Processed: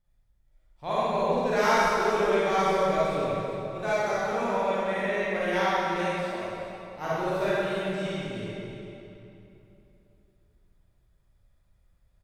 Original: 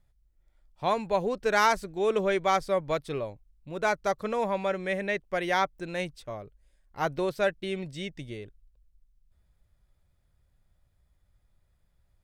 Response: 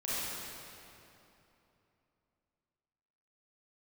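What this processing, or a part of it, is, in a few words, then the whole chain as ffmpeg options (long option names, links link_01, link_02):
cave: -filter_complex "[0:a]asettb=1/sr,asplit=3[link_01][link_02][link_03];[link_01]atrim=end=5.954[link_04];[link_02]atrim=start=5.95:end=6.41,asetpts=PTS-STARTPTS,afade=type=in:duration=0.004:curve=qsin,afade=type=out:start_time=0.456:duration=0.004:curve=qsin,highpass=frequency=190:width=0.5412,highpass=frequency=190:width=1.3066[link_05];[link_03]atrim=start=6.406[link_06];[link_04][link_05]acrossfade=duration=0.004:curve1=hsin:curve2=qsin[link_07];[link_07][link_06]acrossfade=duration=0.004:curve1=qsin:curve2=hsin,aecho=1:1:394:0.2[link_08];[1:a]atrim=start_sample=2205[link_09];[link_08][link_09]afir=irnorm=-1:irlink=0,volume=-4dB"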